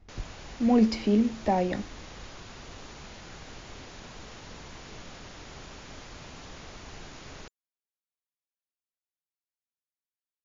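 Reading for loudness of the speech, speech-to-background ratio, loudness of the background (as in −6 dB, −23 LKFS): −25.5 LKFS, 19.5 dB, −45.0 LKFS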